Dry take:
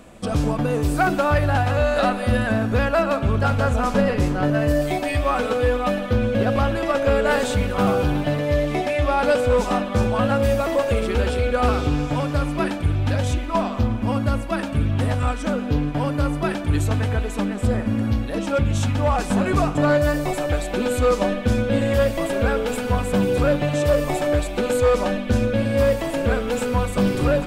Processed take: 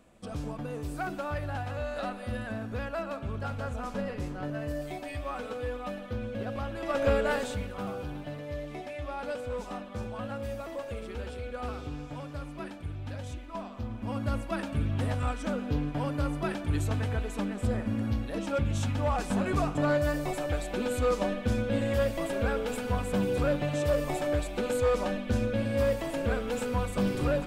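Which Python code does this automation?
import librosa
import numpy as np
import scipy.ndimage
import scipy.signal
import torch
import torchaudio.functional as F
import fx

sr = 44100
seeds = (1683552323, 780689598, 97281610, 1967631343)

y = fx.gain(x, sr, db=fx.line((6.72, -15.0), (7.05, -5.5), (7.85, -17.0), (13.76, -17.0), (14.34, -8.5)))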